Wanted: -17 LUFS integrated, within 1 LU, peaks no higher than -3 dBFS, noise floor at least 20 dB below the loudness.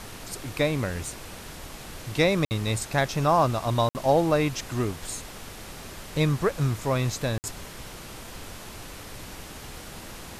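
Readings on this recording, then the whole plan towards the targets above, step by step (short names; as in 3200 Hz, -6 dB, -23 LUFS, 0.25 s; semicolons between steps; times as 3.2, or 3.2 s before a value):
dropouts 3; longest dropout 59 ms; noise floor -42 dBFS; noise floor target -46 dBFS; loudness -26.0 LUFS; peak -9.5 dBFS; loudness target -17.0 LUFS
-> interpolate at 2.45/3.89/7.38, 59 ms; noise print and reduce 6 dB; gain +9 dB; limiter -3 dBFS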